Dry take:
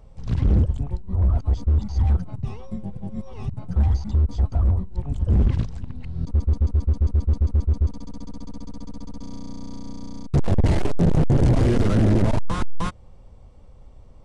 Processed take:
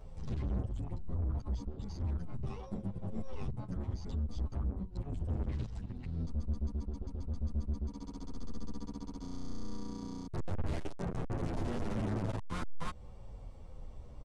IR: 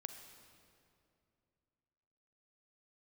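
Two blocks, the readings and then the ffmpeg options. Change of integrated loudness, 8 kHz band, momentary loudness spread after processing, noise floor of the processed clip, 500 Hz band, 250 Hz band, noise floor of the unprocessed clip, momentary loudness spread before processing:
-17.0 dB, n/a, 9 LU, -48 dBFS, -14.5 dB, -14.0 dB, -45 dBFS, 19 LU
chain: -filter_complex "[0:a]acompressor=threshold=-27dB:ratio=2.5,asoftclip=type=tanh:threshold=-31.5dB,asplit=2[a][b];[b]adelay=9.4,afreqshift=-0.95[c];[a][c]amix=inputs=2:normalize=1,volume=2dB"

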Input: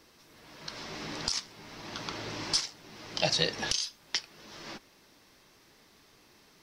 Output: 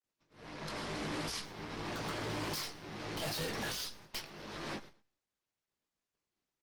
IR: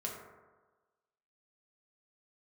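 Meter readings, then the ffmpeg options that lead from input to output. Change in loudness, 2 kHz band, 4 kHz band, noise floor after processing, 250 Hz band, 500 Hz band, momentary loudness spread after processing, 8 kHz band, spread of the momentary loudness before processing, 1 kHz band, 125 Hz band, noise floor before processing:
-7.5 dB, -3.5 dB, -9.5 dB, under -85 dBFS, +0.5 dB, -3.5 dB, 9 LU, -9.0 dB, 18 LU, -1.5 dB, -0.5 dB, -61 dBFS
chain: -filter_complex "[0:a]agate=range=-55dB:threshold=-55dB:ratio=16:detection=peak,lowpass=f=2.9k:p=1,equalizer=f=61:w=6.4:g=-4.5,acontrast=83,aeval=exprs='(tanh(79.4*val(0)+0.65)-tanh(0.65))/79.4':c=same,asplit=2[a][b];[b]adelay=20,volume=-7dB[c];[a][c]amix=inputs=2:normalize=0,aecho=1:1:111|222:0.0794|0.0246,volume=2.5dB" -ar 48000 -c:a libopus -b:a 24k

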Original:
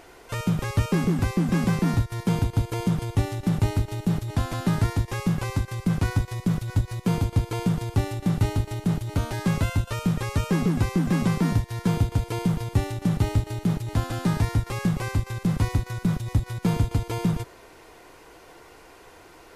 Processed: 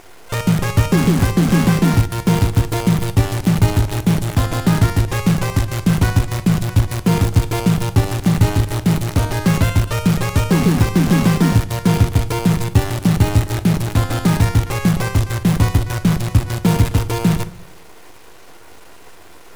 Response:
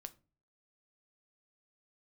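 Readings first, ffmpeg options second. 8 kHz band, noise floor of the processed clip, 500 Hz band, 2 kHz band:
+12.0 dB, -39 dBFS, +9.0 dB, +9.5 dB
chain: -filter_complex "[0:a]acrusher=bits=6:dc=4:mix=0:aa=0.000001,asplit=2[a][b];[1:a]atrim=start_sample=2205,asetrate=26460,aresample=44100[c];[b][c]afir=irnorm=-1:irlink=0,volume=8.5dB[d];[a][d]amix=inputs=2:normalize=0,volume=-1dB"

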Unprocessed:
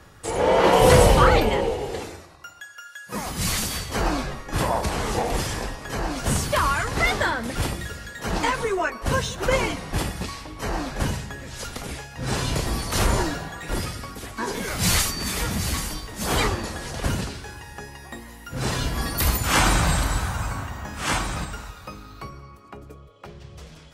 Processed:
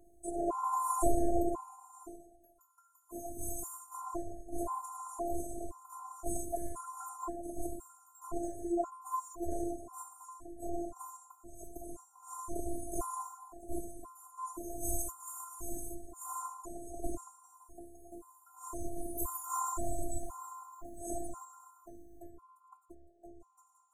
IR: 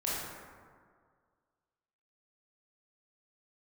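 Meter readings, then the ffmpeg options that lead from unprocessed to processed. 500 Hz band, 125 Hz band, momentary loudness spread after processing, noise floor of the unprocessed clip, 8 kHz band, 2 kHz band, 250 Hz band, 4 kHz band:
-16.0 dB, -24.5 dB, 19 LU, -45 dBFS, -14.0 dB, under -40 dB, -11.5 dB, under -40 dB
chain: -af "asuperstop=centerf=2900:order=20:qfactor=0.54,afftfilt=real='hypot(re,im)*cos(PI*b)':imag='0':win_size=512:overlap=0.75,afftfilt=real='re*gt(sin(2*PI*0.96*pts/sr)*(1-2*mod(floor(b*sr/1024/760),2)),0)':imag='im*gt(sin(2*PI*0.96*pts/sr)*(1-2*mod(floor(b*sr/1024/760),2)),0)':win_size=1024:overlap=0.75,volume=-5.5dB"

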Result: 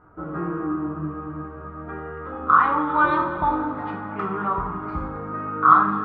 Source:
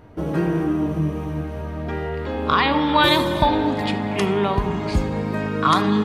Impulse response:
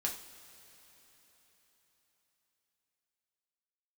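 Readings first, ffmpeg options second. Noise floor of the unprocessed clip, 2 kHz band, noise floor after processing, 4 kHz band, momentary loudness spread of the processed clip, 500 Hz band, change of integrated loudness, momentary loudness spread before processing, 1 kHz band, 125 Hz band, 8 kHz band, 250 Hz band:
-29 dBFS, -2.0 dB, -37 dBFS, under -25 dB, 17 LU, -8.5 dB, -1.0 dB, 11 LU, +2.0 dB, -9.5 dB, under -35 dB, -7.0 dB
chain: -filter_complex "[0:a]lowpass=f=1.3k:t=q:w=9.2[a];[1:a]atrim=start_sample=2205,afade=t=out:st=0.27:d=0.01,atrim=end_sample=12348[b];[a][b]afir=irnorm=-1:irlink=0,volume=-11dB"

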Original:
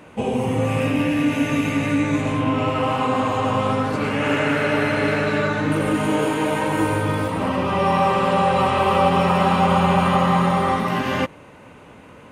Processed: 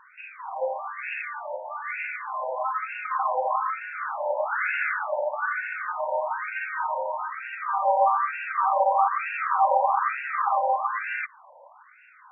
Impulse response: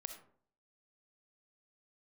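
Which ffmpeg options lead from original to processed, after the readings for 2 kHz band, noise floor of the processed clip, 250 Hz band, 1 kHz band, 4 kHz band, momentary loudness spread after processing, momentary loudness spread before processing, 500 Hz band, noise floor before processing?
-4.0 dB, -53 dBFS, under -40 dB, -3.0 dB, under -20 dB, 11 LU, 5 LU, -8.5 dB, -44 dBFS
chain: -af "afftfilt=real='re*between(b*sr/1024,700*pow(2000/700,0.5+0.5*sin(2*PI*1.1*pts/sr))/1.41,700*pow(2000/700,0.5+0.5*sin(2*PI*1.1*pts/sr))*1.41)':imag='im*between(b*sr/1024,700*pow(2000/700,0.5+0.5*sin(2*PI*1.1*pts/sr))/1.41,700*pow(2000/700,0.5+0.5*sin(2*PI*1.1*pts/sr))*1.41)':win_size=1024:overlap=0.75"

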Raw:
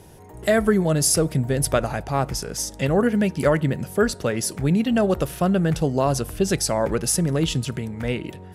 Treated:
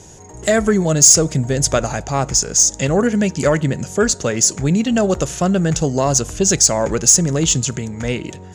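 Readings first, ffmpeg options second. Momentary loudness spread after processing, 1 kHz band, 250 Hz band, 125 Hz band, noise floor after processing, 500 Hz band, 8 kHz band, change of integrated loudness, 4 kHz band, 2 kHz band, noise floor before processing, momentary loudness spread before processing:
10 LU, +3.5 dB, +3.5 dB, +3.5 dB, -37 dBFS, +3.5 dB, +13.5 dB, +6.5 dB, +8.0 dB, +4.0 dB, -42 dBFS, 8 LU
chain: -af "lowpass=f=6.8k:t=q:w=11,acontrast=34,volume=-1.5dB"

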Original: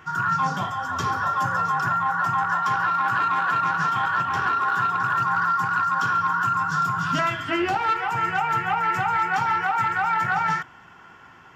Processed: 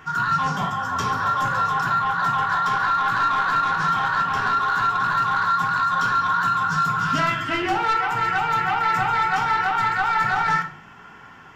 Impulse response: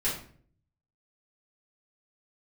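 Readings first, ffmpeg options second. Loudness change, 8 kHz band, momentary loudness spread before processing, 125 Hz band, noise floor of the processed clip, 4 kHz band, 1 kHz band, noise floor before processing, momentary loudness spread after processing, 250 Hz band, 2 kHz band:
+2.0 dB, n/a, 2 LU, +1.0 dB, -45 dBFS, +4.5 dB, +1.5 dB, -48 dBFS, 2 LU, +1.0 dB, +1.5 dB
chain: -filter_complex "[0:a]asoftclip=type=tanh:threshold=-18dB,asplit=2[a][b];[1:a]atrim=start_sample=2205[c];[b][c]afir=irnorm=-1:irlink=0,volume=-9dB[d];[a][d]amix=inputs=2:normalize=0"

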